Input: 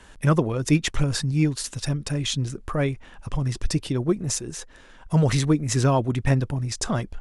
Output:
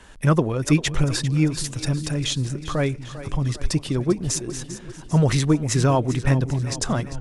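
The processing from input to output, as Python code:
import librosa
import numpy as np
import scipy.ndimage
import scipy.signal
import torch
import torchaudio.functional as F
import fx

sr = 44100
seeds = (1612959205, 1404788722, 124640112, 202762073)

y = fx.echo_split(x, sr, split_hz=310.0, low_ms=616, high_ms=397, feedback_pct=52, wet_db=-13.5)
y = y * 10.0 ** (1.5 / 20.0)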